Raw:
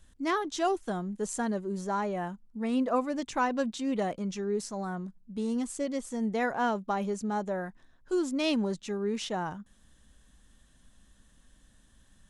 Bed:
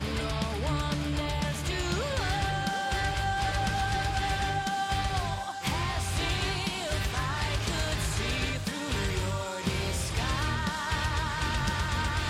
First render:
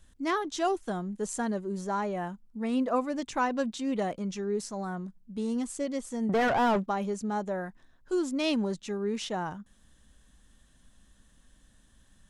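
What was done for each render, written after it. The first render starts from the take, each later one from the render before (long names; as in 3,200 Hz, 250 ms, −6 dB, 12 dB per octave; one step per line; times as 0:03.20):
0:06.29–0:06.86: mid-hump overdrive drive 28 dB, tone 1,300 Hz, clips at −17.5 dBFS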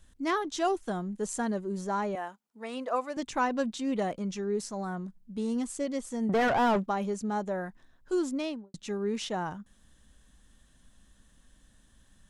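0:02.15–0:03.17: high-pass filter 490 Hz
0:08.24–0:08.74: fade out and dull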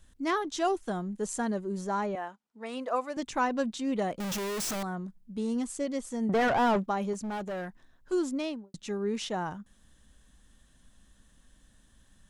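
0:02.06–0:02.66: high-frequency loss of the air 58 metres
0:04.20–0:04.83: sign of each sample alone
0:07.13–0:08.12: gain into a clipping stage and back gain 32 dB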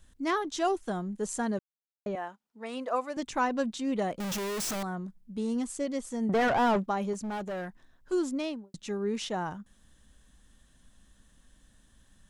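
0:01.59–0:02.06: silence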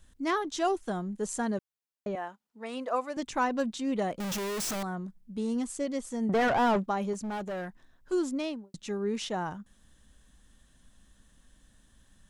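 hard clipping −18 dBFS, distortion −46 dB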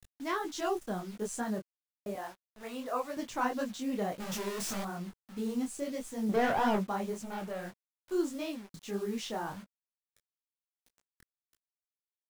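bit-depth reduction 8 bits, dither none
micro pitch shift up and down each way 57 cents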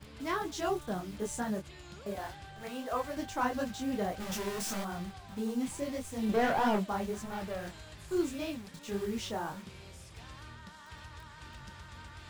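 mix in bed −19.5 dB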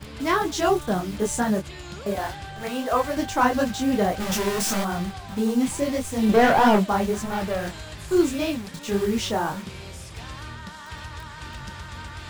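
level +11.5 dB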